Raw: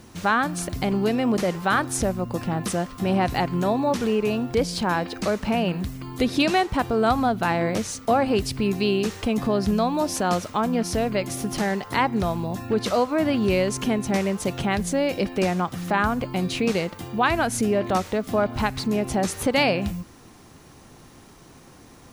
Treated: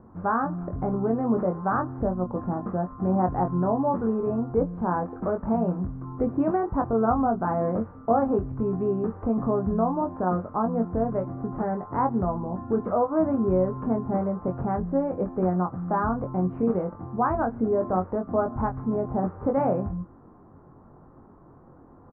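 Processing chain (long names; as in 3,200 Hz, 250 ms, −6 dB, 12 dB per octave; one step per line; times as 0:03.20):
Butterworth low-pass 1,300 Hz 36 dB per octave
double-tracking delay 22 ms −5 dB
level −3 dB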